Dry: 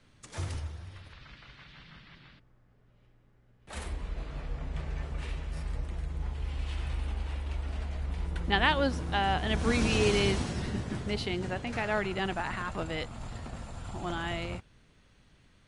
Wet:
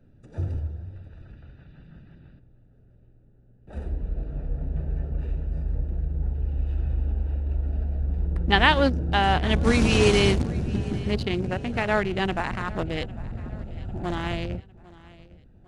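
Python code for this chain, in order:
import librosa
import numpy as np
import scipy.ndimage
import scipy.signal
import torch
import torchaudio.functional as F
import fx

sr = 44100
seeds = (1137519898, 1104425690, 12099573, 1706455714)

y = fx.wiener(x, sr, points=41)
y = fx.echo_feedback(y, sr, ms=802, feedback_pct=46, wet_db=-21.0)
y = y * 10.0 ** (7.5 / 20.0)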